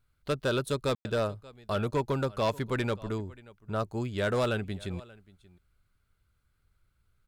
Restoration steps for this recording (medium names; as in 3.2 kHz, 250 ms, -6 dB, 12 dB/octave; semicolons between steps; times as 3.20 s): clip repair -21.5 dBFS; room tone fill 0.95–1.05 s; inverse comb 582 ms -22.5 dB